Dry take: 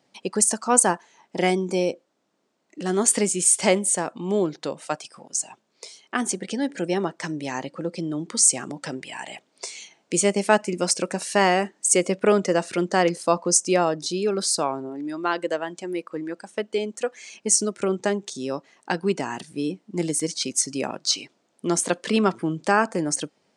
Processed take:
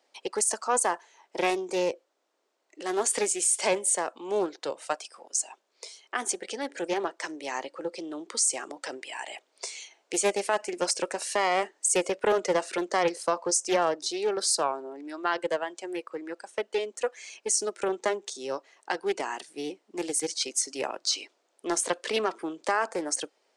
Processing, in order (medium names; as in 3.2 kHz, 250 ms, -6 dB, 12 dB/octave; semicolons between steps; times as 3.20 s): high-pass 370 Hz 24 dB/octave; peak limiter -12.5 dBFS, peak gain reduction 9.5 dB; loudspeaker Doppler distortion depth 0.21 ms; trim -2 dB